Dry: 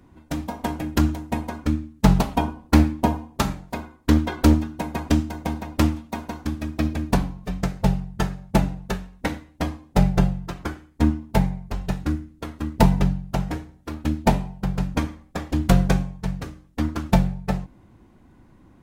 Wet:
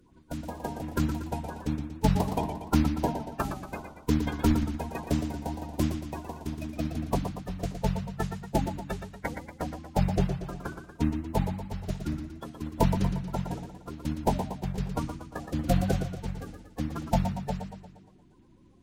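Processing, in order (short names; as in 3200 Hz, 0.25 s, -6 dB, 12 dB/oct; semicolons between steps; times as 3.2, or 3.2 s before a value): bin magnitudes rounded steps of 30 dB; warbling echo 0.117 s, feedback 54%, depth 97 cents, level -8 dB; gain -7.5 dB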